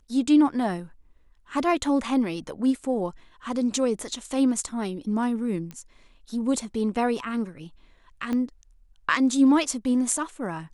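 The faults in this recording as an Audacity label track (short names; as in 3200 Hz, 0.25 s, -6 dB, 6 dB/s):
5.710000	5.710000	pop -24 dBFS
8.330000	8.330000	pop -17 dBFS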